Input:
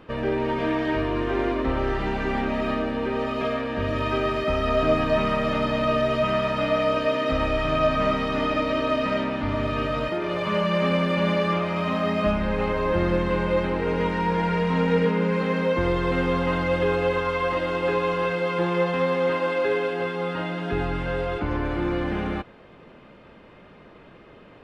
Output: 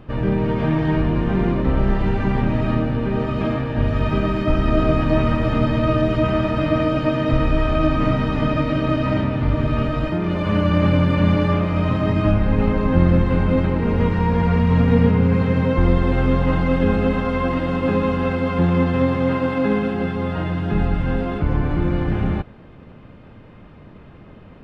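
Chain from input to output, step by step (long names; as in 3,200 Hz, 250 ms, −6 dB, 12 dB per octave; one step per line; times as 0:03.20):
pitch-shifted copies added −12 semitones −1 dB
bass and treble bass +8 dB, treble −2 dB
level −1 dB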